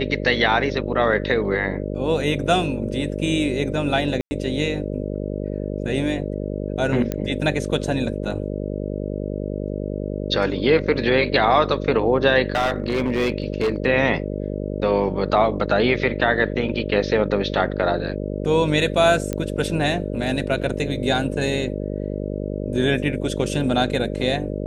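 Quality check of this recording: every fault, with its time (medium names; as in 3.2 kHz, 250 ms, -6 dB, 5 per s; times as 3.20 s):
buzz 50 Hz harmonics 12 -27 dBFS
4.21–4.31 s: dropout 100 ms
7.12 s: pop -11 dBFS
12.54–13.86 s: clipped -16 dBFS
19.33 s: pop -12 dBFS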